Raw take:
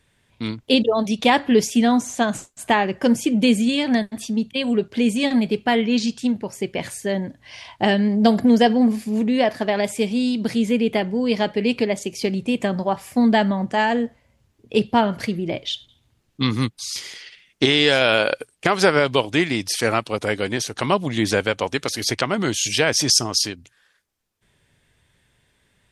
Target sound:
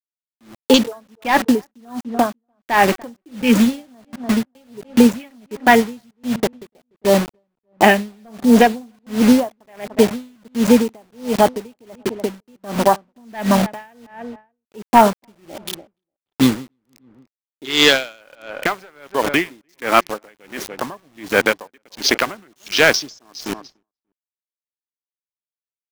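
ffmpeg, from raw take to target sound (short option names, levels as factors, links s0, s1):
-filter_complex "[0:a]highpass=280,afwtdn=0.0562,equalizer=f=460:w=1.2:g=-5,bandreject=f=378.8:t=h:w=4,bandreject=f=757.6:t=h:w=4,bandreject=f=1136.4:t=h:w=4,bandreject=f=1515.2:t=h:w=4,bandreject=f=1894:t=h:w=4,aresample=16000,volume=4.47,asoftclip=hard,volume=0.224,aresample=44100,acrusher=bits=5:mix=0:aa=0.000001,asplit=2[s0][s1];[s1]adelay=293,lowpass=f=1600:p=1,volume=0.1,asplit=2[s2][s3];[s3]adelay=293,lowpass=f=1600:p=1,volume=0.22[s4];[s0][s2][s4]amix=inputs=3:normalize=0,alimiter=level_in=6.31:limit=0.891:release=50:level=0:latency=1,aeval=exprs='val(0)*pow(10,-38*(0.5-0.5*cos(2*PI*1.4*n/s))/20)':c=same"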